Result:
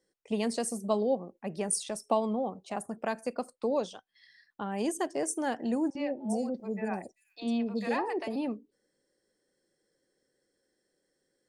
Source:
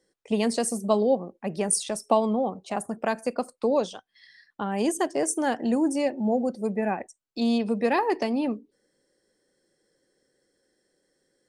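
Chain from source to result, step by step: 5.90–8.36 s: three bands offset in time mids, lows, highs 50/390 ms, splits 650/4400 Hz; trim -6 dB

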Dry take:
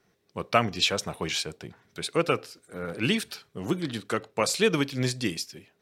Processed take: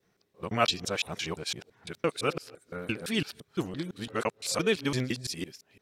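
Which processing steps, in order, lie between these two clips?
time reversed locally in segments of 170 ms; trim -3.5 dB

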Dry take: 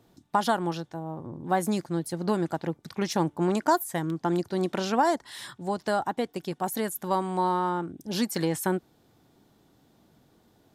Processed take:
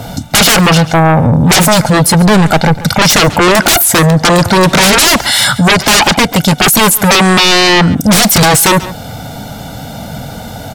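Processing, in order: comb 1.4 ms, depth 97%; 2.14–2.79 s: valve stage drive 25 dB, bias 0.6; sine folder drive 18 dB, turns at -11.5 dBFS; delay 138 ms -21 dB; loudness maximiser +15.5 dB; trim -2 dB

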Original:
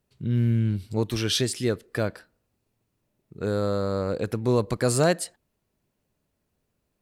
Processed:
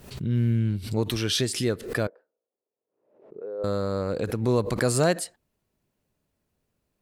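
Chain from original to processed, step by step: 2.07–3.64 s: ladder band-pass 540 Hz, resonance 55%; swell ahead of each attack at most 93 dB/s; trim -1 dB

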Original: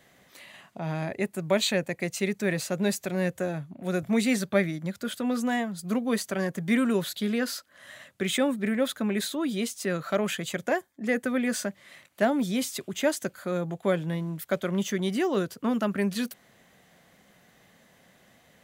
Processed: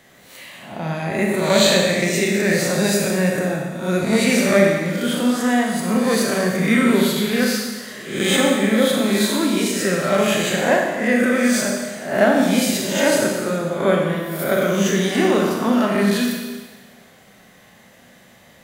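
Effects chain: reverse spectral sustain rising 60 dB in 0.59 s; Schroeder reverb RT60 1.4 s, combs from 29 ms, DRR -0.5 dB; trim +5 dB

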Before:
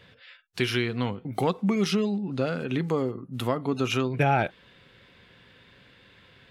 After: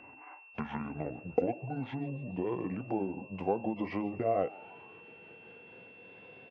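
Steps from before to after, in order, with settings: pitch bend over the whole clip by -10 st ending unshifted; tilt EQ -3.5 dB/octave; compression, threshold -25 dBFS, peak gain reduction 13 dB; cabinet simulation 300–4400 Hz, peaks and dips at 470 Hz +6 dB, 750 Hz +9 dB, 1.3 kHz -5 dB, 1.8 kHz -6 dB, 4 kHz -8 dB; frequency-shifting echo 147 ms, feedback 58%, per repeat +100 Hz, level -21.5 dB; whistle 2.7 kHz -53 dBFS

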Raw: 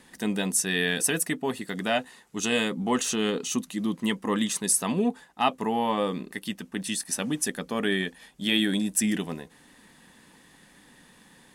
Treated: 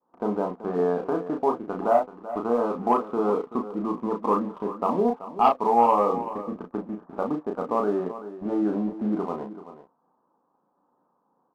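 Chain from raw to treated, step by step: high-pass 710 Hz 12 dB/octave; expander -47 dBFS; steep low-pass 1.3 kHz 72 dB/octave; tilt EQ -3.5 dB/octave; waveshaping leveller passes 1; in parallel at -0.5 dB: compression, threshold -37 dBFS, peak gain reduction 17 dB; on the sum: doubling 34 ms -4 dB; delay 382 ms -13.5 dB; trim +3 dB

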